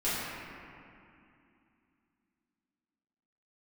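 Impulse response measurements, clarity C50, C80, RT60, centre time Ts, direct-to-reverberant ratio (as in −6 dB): −3.5 dB, −1.5 dB, 2.6 s, 169 ms, −13.0 dB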